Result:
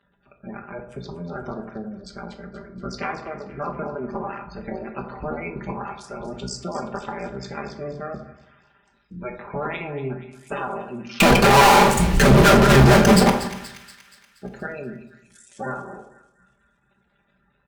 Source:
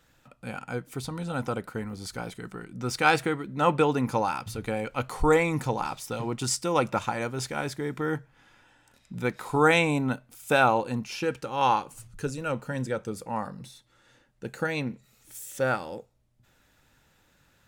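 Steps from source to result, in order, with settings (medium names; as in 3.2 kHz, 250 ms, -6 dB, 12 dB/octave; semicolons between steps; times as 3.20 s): cycle switcher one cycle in 2, muted; low-pass 6.5 kHz 12 dB/octave; spectral gate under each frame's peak -15 dB strong; high-pass 48 Hz; comb 5 ms, depth 50%; compression 5:1, threshold -27 dBFS, peak gain reduction 10 dB; 11.20–13.30 s: fuzz box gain 55 dB, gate -58 dBFS; two-band feedback delay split 1.5 kHz, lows 89 ms, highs 238 ms, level -12.5 dB; reverberation RT60 0.45 s, pre-delay 5 ms, DRR 4 dB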